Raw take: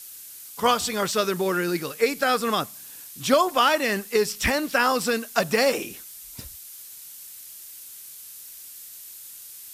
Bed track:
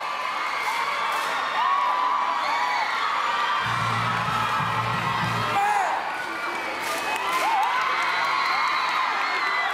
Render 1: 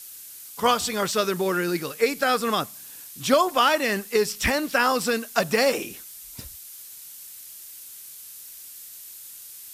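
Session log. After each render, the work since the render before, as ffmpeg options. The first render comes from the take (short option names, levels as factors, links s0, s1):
-af anull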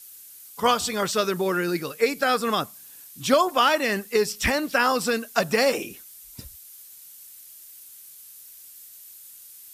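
-af "afftdn=nr=6:nf=-43"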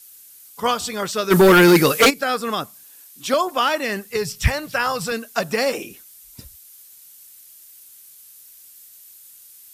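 -filter_complex "[0:a]asplit=3[s0][s1][s2];[s0]afade=t=out:st=1.3:d=0.02[s3];[s1]aeval=exprs='0.422*sin(PI/2*4.47*val(0)/0.422)':c=same,afade=t=in:st=1.3:d=0.02,afade=t=out:st=2.09:d=0.02[s4];[s2]afade=t=in:st=2.09:d=0.02[s5];[s3][s4][s5]amix=inputs=3:normalize=0,asettb=1/sr,asplit=3[s6][s7][s8];[s6]atrim=end=2.834[s9];[s7]atrim=start=2.83:end=3.34,asetpts=PTS-STARTPTS,afade=t=in:d=0.004:c=qsin,afade=t=out:st=0.506:d=0.004:c=qsin,highpass=270[s10];[s8]atrim=start=3.336[s11];[s9][s10]acrossfade=d=0.004:c1=hsin:c2=qsin[s12];[s12][s11]acrossfade=d=0.004:c1=qsin:c2=hsin,asettb=1/sr,asplit=3[s13][s14][s15];[s13]atrim=end=4.104[s16];[s14]atrim=start=4.1:end=5.12,asetpts=PTS-STARTPTS,afade=t=in:d=0.004:c=qsin,afade=t=out:st=1.016:d=0.004:c=qsin,lowshelf=f=180:t=q:w=3:g=11[s17];[s15]atrim=start=5.116[s18];[s16][s17]acrossfade=d=0.004:c1=hsin:c2=qsin[s19];[s19][s18]acrossfade=d=0.004:c1=qsin:c2=hsin"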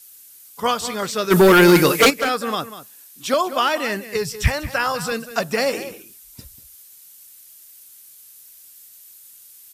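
-filter_complex "[0:a]asplit=2[s0][s1];[s1]adelay=192.4,volume=0.224,highshelf=f=4000:g=-4.33[s2];[s0][s2]amix=inputs=2:normalize=0"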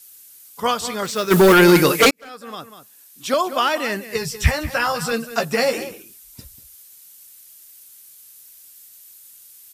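-filter_complex "[0:a]asettb=1/sr,asplit=3[s0][s1][s2];[s0]atrim=end=1.054[s3];[s1]atrim=start=1.05:end=1.54,asetpts=PTS-STARTPTS,afade=t=in:d=0.004:c=qsin,afade=t=out:st=0.486:d=0.004:c=qsin,acrusher=bits=4:mode=log:mix=0:aa=0.000001[s4];[s2]atrim=start=1.536[s5];[s3][s4]acrossfade=d=0.004:c1=hsin:c2=qsin[s6];[s6][s5]acrossfade=d=0.004:c1=qsin:c2=hsin,asettb=1/sr,asplit=3[s7][s8][s9];[s7]atrim=end=4.094[s10];[s8]atrim=start=4.09:end=5.87,asetpts=PTS-STARTPTS,afade=t=in:d=0.004:c=qsin,afade=t=out:st=1.776:d=0.004:c=qsin,asplit=2[s11][s12];[s12]adelay=13,volume=0.562[s13];[s11][s13]amix=inputs=2:normalize=0,atrim=end_sample=78498[s14];[s9]atrim=start=5.866[s15];[s10][s14]acrossfade=d=0.004:c1=hsin:c2=qsin[s16];[s16][s15]acrossfade=d=0.004:c1=qsin:c2=hsin,asplit=2[s17][s18];[s17]atrim=end=2.11,asetpts=PTS-STARTPTS,afade=t=out:st=2.106:d=0.004:c=hsin[s19];[s18]atrim=start=2.11,asetpts=PTS-STARTPTS,afade=t=in:d=1.29[s20];[s19][s20]concat=n=2:v=0:a=1"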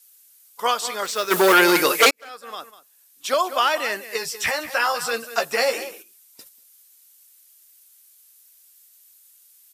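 -af "agate=range=0.398:threshold=0.01:ratio=16:detection=peak,highpass=490"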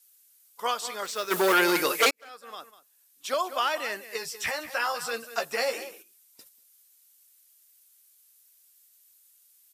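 -af "volume=0.447"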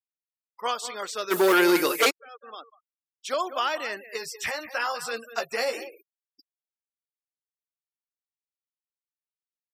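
-af "afftfilt=real='re*gte(hypot(re,im),0.00794)':imag='im*gte(hypot(re,im),0.00794)':win_size=1024:overlap=0.75,adynamicequalizer=threshold=0.0112:dfrequency=340:dqfactor=2.4:tfrequency=340:tqfactor=2.4:attack=5:release=100:ratio=0.375:range=3:mode=boostabove:tftype=bell"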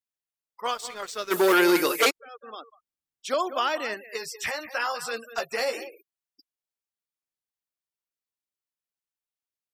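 -filter_complex "[0:a]asplit=3[s0][s1][s2];[s0]afade=t=out:st=0.64:d=0.02[s3];[s1]aeval=exprs='sgn(val(0))*max(abs(val(0))-0.00531,0)':c=same,afade=t=in:st=0.64:d=0.02,afade=t=out:st=1.48:d=0.02[s4];[s2]afade=t=in:st=1.48:d=0.02[s5];[s3][s4][s5]amix=inputs=3:normalize=0,asettb=1/sr,asplit=3[s6][s7][s8];[s6]atrim=end=2.154[s9];[s7]atrim=start=2.15:end=3.94,asetpts=PTS-STARTPTS,afade=t=in:d=0.004:c=qsin,afade=t=out:st=1.786:d=0.004:c=qsin,lowshelf=f=290:g=10[s10];[s8]atrim=start=3.936[s11];[s9][s10]acrossfade=d=0.004:c1=hsin:c2=qsin[s12];[s12][s11]acrossfade=d=0.004:c1=qsin:c2=hsin,asettb=1/sr,asplit=3[s13][s14][s15];[s13]atrim=end=4.964[s16];[s14]atrim=start=4.96:end=5.61,asetpts=PTS-STARTPTS,afade=t=in:d=0.004:c=qsin,afade=t=out:st=0.646:d=0.004:c=qsin,asoftclip=type=hard:threshold=0.112[s17];[s15]atrim=start=5.606[s18];[s16][s17]acrossfade=d=0.004:c1=hsin:c2=qsin[s19];[s19][s18]acrossfade=d=0.004:c1=qsin:c2=hsin"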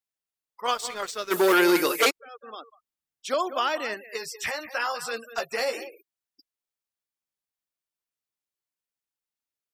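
-filter_complex "[0:a]asplit=3[s0][s1][s2];[s0]atrim=end=0.682[s3];[s1]atrim=start=0.678:end=1.112,asetpts=PTS-STARTPTS,volume=1.5[s4];[s2]atrim=start=1.108[s5];[s3][s4]acrossfade=d=0.004:c1=hsin:c2=hsin[s6];[s6][s5]acrossfade=d=0.004:c1=hsin:c2=hsin"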